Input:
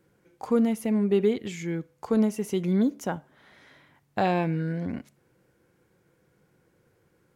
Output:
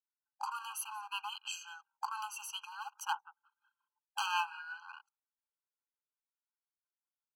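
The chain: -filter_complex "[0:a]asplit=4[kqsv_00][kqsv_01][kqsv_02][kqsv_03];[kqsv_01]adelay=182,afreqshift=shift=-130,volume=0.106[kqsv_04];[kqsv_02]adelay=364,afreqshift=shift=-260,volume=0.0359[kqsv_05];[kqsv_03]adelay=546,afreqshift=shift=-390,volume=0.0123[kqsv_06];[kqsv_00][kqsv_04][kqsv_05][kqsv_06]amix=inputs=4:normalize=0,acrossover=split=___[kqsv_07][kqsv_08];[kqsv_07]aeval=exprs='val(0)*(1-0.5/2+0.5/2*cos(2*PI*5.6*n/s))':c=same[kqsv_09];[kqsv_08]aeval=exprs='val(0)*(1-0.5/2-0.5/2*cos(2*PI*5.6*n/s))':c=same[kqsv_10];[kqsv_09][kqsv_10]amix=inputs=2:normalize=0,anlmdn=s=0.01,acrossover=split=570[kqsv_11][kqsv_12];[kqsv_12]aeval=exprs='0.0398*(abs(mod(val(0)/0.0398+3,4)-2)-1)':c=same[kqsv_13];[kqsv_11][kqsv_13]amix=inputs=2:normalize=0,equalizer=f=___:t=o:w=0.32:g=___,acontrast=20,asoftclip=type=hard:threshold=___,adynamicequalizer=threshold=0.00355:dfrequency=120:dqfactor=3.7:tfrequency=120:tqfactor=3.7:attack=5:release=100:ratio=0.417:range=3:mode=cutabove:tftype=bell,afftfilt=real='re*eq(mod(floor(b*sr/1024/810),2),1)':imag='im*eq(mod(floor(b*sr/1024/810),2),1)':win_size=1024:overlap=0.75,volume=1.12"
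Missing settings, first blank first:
420, 480, -14.5, 0.119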